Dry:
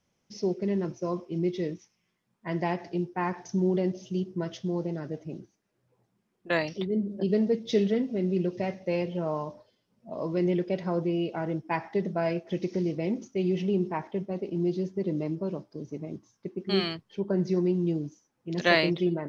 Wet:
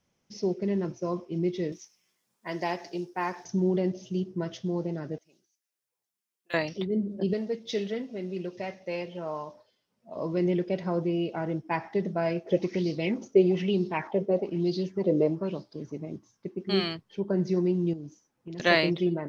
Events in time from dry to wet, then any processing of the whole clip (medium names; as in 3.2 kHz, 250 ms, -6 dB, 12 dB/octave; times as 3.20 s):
1.72–3.45 s: tone controls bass -11 dB, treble +12 dB
5.18–6.54 s: differentiator
7.33–10.16 s: bass shelf 410 Hz -11 dB
12.46–15.92 s: sweeping bell 1.1 Hz 440–4600 Hz +16 dB
17.93–18.60 s: compression 10:1, threshold -35 dBFS